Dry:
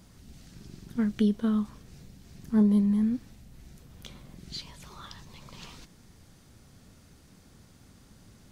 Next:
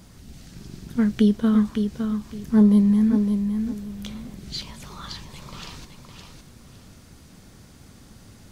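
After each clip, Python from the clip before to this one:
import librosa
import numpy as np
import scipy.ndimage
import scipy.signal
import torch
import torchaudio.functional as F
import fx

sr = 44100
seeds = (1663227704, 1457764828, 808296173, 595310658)

y = fx.echo_feedback(x, sr, ms=561, feedback_pct=24, wet_db=-6.5)
y = y * 10.0 ** (6.5 / 20.0)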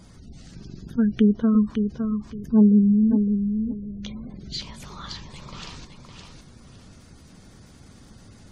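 y = fx.spec_gate(x, sr, threshold_db=-30, keep='strong')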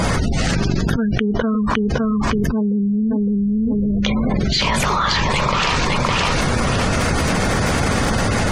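y = fx.band_shelf(x, sr, hz=1100.0, db=8.5, octaves=2.9)
y = fx.env_flatten(y, sr, amount_pct=100)
y = y * 10.0 ** (-6.0 / 20.0)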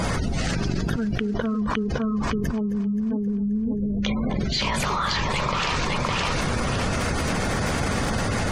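y = fx.echo_feedback(x, sr, ms=264, feedback_pct=57, wet_db=-17.0)
y = y * 10.0 ** (-6.5 / 20.0)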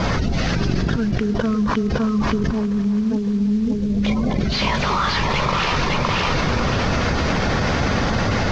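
y = fx.cvsd(x, sr, bps=32000)
y = fx.echo_wet_lowpass(y, sr, ms=337, feedback_pct=54, hz=2700.0, wet_db=-15.0)
y = y * 10.0 ** (5.0 / 20.0)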